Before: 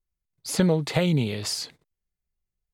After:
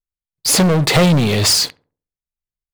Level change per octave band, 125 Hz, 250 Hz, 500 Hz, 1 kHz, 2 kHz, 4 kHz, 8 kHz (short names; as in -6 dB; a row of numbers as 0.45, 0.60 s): +9.5, +9.0, +8.5, +14.5, +13.0, +15.5, +16.5 dB